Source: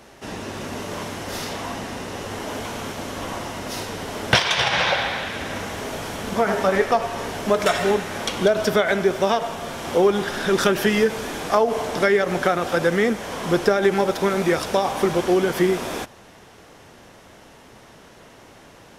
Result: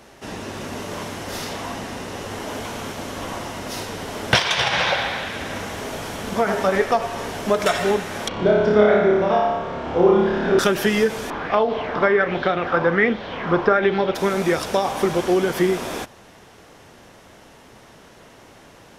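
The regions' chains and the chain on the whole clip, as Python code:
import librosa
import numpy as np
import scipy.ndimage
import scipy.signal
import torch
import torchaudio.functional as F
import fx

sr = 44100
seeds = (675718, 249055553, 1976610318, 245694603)

y = fx.chain(x, sr, fx.spacing_loss(db_at_10k=33),
    fx.room_flutter(wall_m=4.9, rt60_s=1.1), at=(8.28, 10.59))
y = fx.chain(y, sr, fx.air_absorb(metres=300.0),
    fx.doubler(ms=42.0, db=-13.5),
    fx.bell_lfo(hz=1.3, low_hz=990.0, high_hz=4000.0, db=11), at=(11.3, 14.15))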